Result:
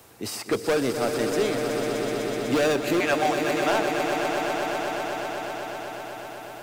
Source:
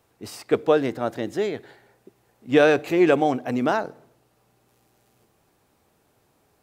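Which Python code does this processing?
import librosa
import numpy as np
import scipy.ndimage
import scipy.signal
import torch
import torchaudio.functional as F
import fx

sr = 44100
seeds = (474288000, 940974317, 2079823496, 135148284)

y = fx.steep_highpass(x, sr, hz=580.0, slope=72, at=(3.0, 3.71))
y = np.clip(10.0 ** (19.0 / 20.0) * y, -1.0, 1.0) / 10.0 ** (19.0 / 20.0)
y = fx.high_shelf(y, sr, hz=3200.0, db=8.5)
y = fx.echo_swell(y, sr, ms=125, loudest=5, wet_db=-9.5)
y = fx.band_squash(y, sr, depth_pct=40)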